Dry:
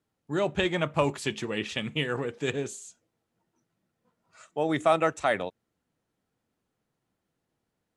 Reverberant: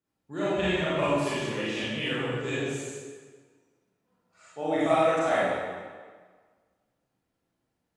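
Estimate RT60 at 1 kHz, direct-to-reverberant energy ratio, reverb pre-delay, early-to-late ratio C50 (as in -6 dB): 1.6 s, -10.0 dB, 30 ms, -5.5 dB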